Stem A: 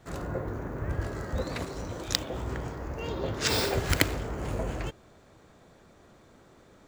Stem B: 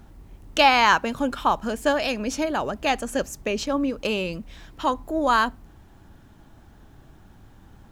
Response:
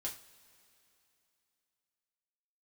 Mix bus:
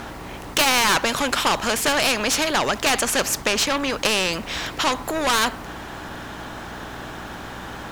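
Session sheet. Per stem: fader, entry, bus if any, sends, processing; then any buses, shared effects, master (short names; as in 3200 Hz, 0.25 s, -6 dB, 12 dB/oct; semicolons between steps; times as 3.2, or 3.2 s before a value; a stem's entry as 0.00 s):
-17.5 dB, 0.65 s, no send, dry
+1.0 dB, 0.00 s, no send, hum 60 Hz, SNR 24 dB; overdrive pedal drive 22 dB, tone 3700 Hz, clips at -4.5 dBFS; spectral compressor 2:1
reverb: off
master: dry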